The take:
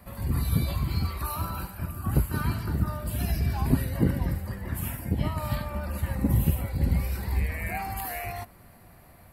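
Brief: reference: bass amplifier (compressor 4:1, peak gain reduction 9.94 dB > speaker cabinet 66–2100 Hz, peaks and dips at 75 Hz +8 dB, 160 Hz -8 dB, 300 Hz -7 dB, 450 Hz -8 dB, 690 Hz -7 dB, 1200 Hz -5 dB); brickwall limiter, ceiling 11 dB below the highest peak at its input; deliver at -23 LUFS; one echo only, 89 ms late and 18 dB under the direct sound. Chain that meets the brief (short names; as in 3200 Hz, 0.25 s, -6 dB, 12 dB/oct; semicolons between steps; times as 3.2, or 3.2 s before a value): limiter -20 dBFS; echo 89 ms -18 dB; compressor 4:1, threshold -35 dBFS; speaker cabinet 66–2100 Hz, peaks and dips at 75 Hz +8 dB, 160 Hz -8 dB, 300 Hz -7 dB, 450 Hz -8 dB, 690 Hz -7 dB, 1200 Hz -5 dB; gain +16 dB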